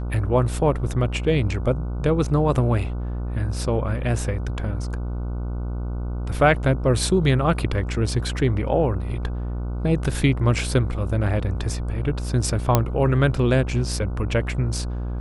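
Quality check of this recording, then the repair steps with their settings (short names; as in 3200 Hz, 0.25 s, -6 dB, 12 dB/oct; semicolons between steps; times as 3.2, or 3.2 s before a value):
buzz 60 Hz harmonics 25 -27 dBFS
12.75 pop -2 dBFS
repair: de-click; de-hum 60 Hz, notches 25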